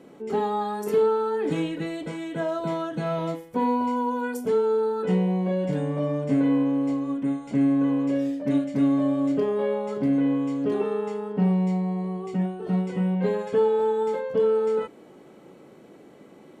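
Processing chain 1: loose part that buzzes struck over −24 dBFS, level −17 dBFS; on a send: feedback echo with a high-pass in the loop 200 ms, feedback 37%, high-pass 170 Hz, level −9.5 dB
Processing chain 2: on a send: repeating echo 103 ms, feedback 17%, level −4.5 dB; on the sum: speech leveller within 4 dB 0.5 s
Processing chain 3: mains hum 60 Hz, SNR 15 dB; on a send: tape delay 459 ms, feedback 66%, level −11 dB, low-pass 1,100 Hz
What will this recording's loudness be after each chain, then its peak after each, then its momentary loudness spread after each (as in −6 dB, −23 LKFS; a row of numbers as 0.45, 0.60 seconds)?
−24.0, −24.5, −24.5 LKFS; −10.0, −12.0, −12.0 dBFS; 7, 3, 9 LU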